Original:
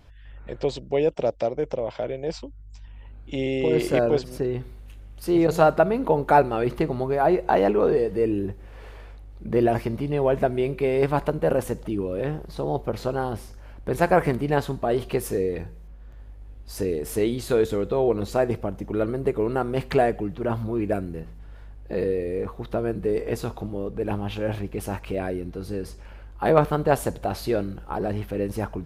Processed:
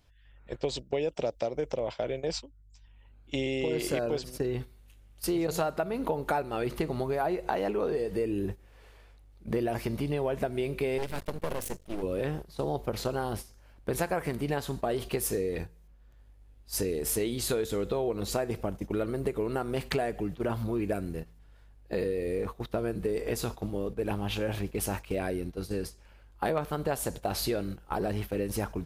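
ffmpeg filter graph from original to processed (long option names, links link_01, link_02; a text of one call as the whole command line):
ffmpeg -i in.wav -filter_complex "[0:a]asettb=1/sr,asplit=3[link_01][link_02][link_03];[link_01]atrim=end=10.984[link_04];[link_02]atrim=start=10.98:end=12.03,asetpts=PTS-STARTPTS,afade=type=in:duration=0.004:curve=qsin,afade=type=out:start_time=1.046:duration=0.004:curve=qsin,equalizer=frequency=930:width=1.1:gain=-10.5,aeval=exprs='max(val(0),0)':channel_layout=same[link_05];[link_03]atrim=start=12.026[link_06];[link_04][link_05]acrossfade=duration=0.004:curve1=hsin:curve2=qsin[link_07];[link_07][link_06]acrossfade=duration=0.004:curve1=qsin:curve2=hsin,highshelf=frequency=2900:gain=10,agate=range=-12dB:threshold=-32dB:ratio=16:detection=peak,acompressor=threshold=-25dB:ratio=6,volume=-1.5dB" out.wav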